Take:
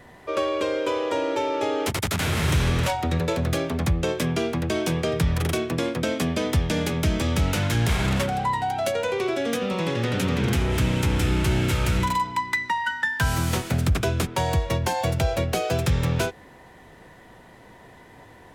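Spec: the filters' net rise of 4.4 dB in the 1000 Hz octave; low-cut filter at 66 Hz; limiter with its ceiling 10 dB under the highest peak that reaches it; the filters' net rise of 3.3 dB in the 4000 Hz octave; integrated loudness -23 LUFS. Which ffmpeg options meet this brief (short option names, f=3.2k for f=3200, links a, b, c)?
-af "highpass=66,equalizer=f=1k:t=o:g=5,equalizer=f=4k:t=o:g=4,volume=4.5dB,alimiter=limit=-14.5dB:level=0:latency=1"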